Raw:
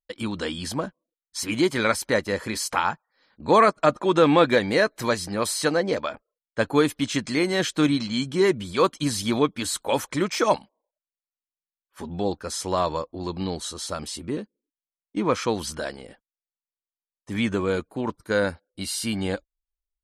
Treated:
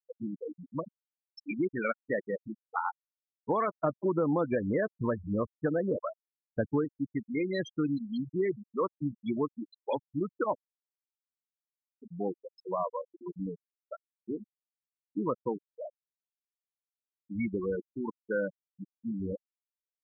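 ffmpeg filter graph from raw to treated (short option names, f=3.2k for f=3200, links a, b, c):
-filter_complex "[0:a]asettb=1/sr,asplit=3[a][b][c];[a]atrim=end=3.824[d];[b]atrim=start=3.82:end=6.85,asetpts=PTS-STARTPTS,afade=t=in:d=0.004:c=qsin,afade=t=out:st=3.026:d=0.004:c=qsin,lowpass=f=3.3k:p=1,lowshelf=f=480:g=8[e];[c]atrim=start=6.846[f];[d][e]acrossfade=d=0.004:c1=hsin:c2=qsin[g];[g][f]acrossfade=d=0.004:c1=qsin:c2=hsin,afftfilt=real='re*gte(hypot(re,im),0.2)':imag='im*gte(hypot(re,im),0.2)':win_size=1024:overlap=0.75,acompressor=threshold=-20dB:ratio=4,volume=-6dB"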